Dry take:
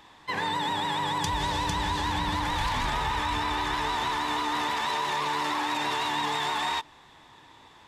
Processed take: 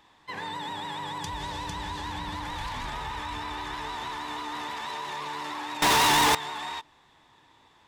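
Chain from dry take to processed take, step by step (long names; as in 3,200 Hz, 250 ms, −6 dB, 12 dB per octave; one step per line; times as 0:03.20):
0:05.82–0:06.35: fuzz pedal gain 44 dB, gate −51 dBFS
level −6.5 dB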